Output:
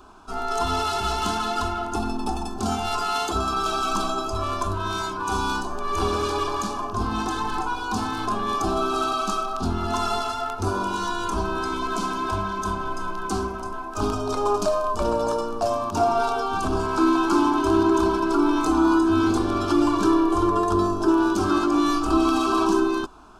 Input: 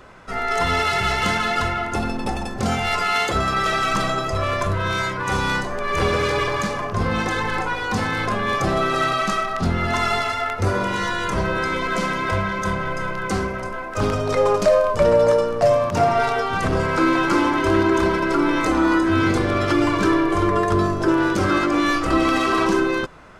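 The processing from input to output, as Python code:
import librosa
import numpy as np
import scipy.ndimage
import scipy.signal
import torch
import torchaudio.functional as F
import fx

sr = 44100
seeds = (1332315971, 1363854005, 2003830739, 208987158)

y = fx.fixed_phaser(x, sr, hz=530.0, stages=6)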